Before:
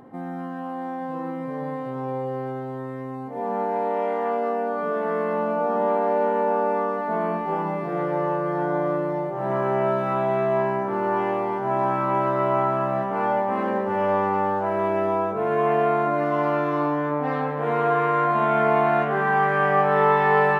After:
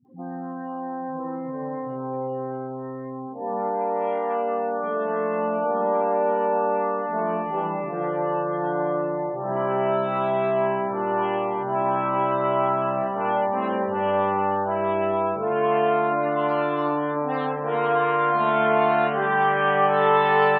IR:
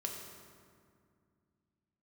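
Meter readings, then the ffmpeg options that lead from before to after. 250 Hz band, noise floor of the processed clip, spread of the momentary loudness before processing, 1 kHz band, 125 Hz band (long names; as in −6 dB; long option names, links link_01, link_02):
−1.5 dB, −33 dBFS, 11 LU, 0.0 dB, −3.5 dB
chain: -filter_complex "[0:a]aexciter=amount=4.6:drive=1.3:freq=2800,afftdn=noise_reduction=31:noise_floor=-37,acrossover=split=190[link_01][link_02];[link_02]adelay=50[link_03];[link_01][link_03]amix=inputs=2:normalize=0"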